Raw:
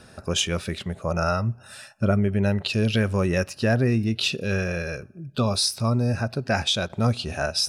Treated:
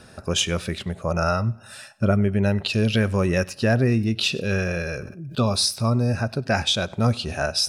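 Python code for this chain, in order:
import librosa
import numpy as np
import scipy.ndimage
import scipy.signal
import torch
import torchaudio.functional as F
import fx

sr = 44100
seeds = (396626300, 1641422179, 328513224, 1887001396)

p1 = x + fx.echo_feedback(x, sr, ms=97, feedback_pct=31, wet_db=-24.0, dry=0)
p2 = fx.sustainer(p1, sr, db_per_s=58.0, at=(4.31, 5.46))
y = p2 * 10.0 ** (1.5 / 20.0)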